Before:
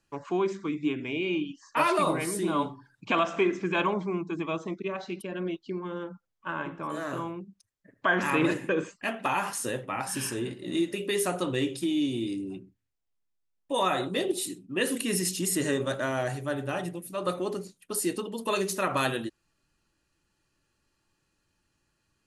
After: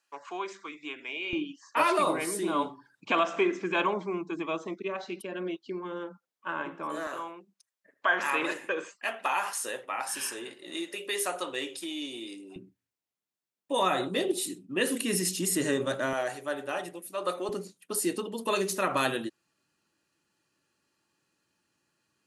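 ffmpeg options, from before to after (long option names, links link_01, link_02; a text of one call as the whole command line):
ffmpeg -i in.wav -af "asetnsamples=nb_out_samples=441:pad=0,asendcmd='1.33 highpass f 270;7.07 highpass f 570;12.56 highpass f 150;16.13 highpass f 390;17.49 highpass f 170',highpass=740" out.wav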